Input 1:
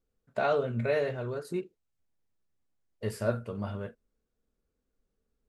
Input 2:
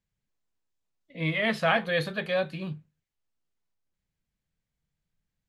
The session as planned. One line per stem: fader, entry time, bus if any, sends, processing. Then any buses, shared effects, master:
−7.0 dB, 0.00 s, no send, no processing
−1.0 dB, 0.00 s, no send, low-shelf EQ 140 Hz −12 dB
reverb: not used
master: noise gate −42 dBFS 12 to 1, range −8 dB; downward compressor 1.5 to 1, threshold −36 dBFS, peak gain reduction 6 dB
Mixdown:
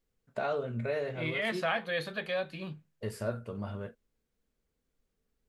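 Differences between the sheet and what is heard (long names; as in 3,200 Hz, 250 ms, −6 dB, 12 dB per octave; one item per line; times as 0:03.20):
stem 1 −7.0 dB → −1.0 dB
master: missing noise gate −42 dBFS 12 to 1, range −8 dB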